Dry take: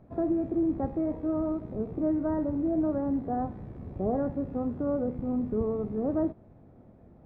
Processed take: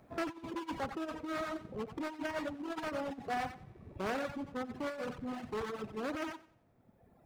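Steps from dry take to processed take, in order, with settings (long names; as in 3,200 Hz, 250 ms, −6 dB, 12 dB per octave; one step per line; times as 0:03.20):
hard clipping −27.5 dBFS, distortion −12 dB
on a send: feedback echo with a high-pass in the loop 91 ms, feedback 34%, high-pass 280 Hz, level −4 dB
on the sum: compressor whose output falls as the input rises −30 dBFS, ratio −0.5
low-shelf EQ 90 Hz −6 dB
reverb reduction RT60 1.7 s
tilt shelving filter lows −9 dB, about 1,100 Hz
level +1.5 dB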